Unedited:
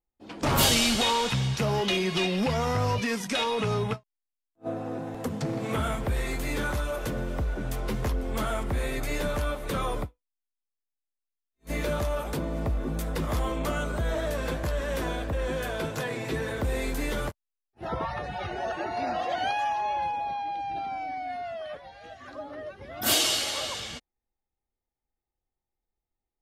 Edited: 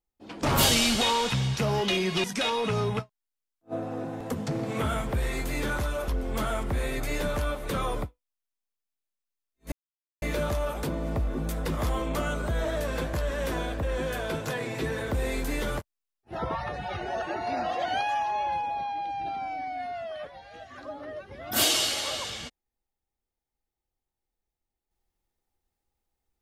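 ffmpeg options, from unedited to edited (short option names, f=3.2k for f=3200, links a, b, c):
-filter_complex "[0:a]asplit=4[a][b][c][d];[a]atrim=end=2.242[e];[b]atrim=start=3.178:end=7.022[f];[c]atrim=start=8.078:end=11.72,asetpts=PTS-STARTPTS,afade=t=out:st=3.638:d=0.004:c=hsin,apad=pad_dur=0.5[g];[d]atrim=start=11.72,asetpts=PTS-STARTPTS,afade=t=in:d=0.004:c=hsin[h];[e][f]acrossfade=d=0.004:c1=hsin:c2=hsin[i];[g][h]concat=n=2:v=0:a=1[j];[i][j]acrossfade=d=0.004:c1=hsin:c2=hsin"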